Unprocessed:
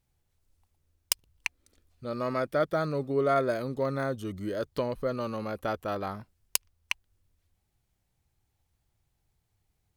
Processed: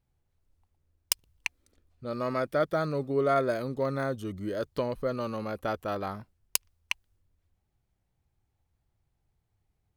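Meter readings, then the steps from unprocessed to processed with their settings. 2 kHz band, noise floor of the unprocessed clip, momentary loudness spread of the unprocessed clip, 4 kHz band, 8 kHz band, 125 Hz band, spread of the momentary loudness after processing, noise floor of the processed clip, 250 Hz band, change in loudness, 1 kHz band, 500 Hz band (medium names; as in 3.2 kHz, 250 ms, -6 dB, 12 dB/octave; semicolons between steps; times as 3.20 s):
0.0 dB, -77 dBFS, 10 LU, 0.0 dB, 0.0 dB, 0.0 dB, 10 LU, -78 dBFS, 0.0 dB, 0.0 dB, 0.0 dB, 0.0 dB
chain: tape noise reduction on one side only decoder only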